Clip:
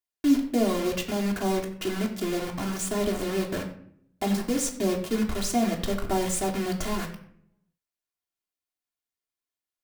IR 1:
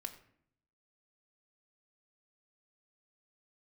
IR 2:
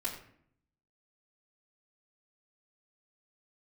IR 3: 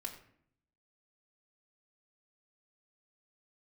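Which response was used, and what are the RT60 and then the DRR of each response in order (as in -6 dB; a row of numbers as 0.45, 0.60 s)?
3; 0.60, 0.60, 0.60 s; 3.5, -7.5, -1.0 dB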